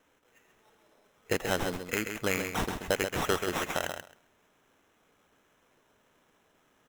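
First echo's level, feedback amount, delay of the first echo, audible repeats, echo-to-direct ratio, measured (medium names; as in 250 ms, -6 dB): -7.0 dB, 16%, 133 ms, 2, -7.0 dB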